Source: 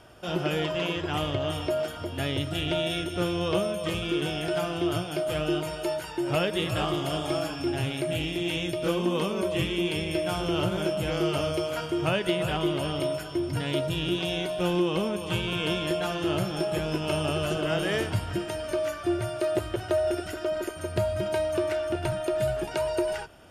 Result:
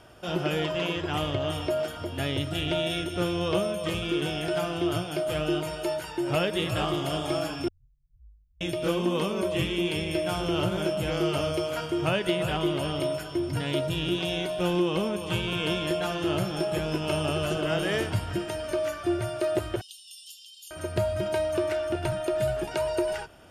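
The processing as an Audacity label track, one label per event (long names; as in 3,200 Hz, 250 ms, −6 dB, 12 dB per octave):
7.680000	8.610000	inverse Chebyshev band-stop filter 250–9,900 Hz, stop band 80 dB
19.810000	20.710000	Butterworth high-pass 2,900 Hz 96 dB per octave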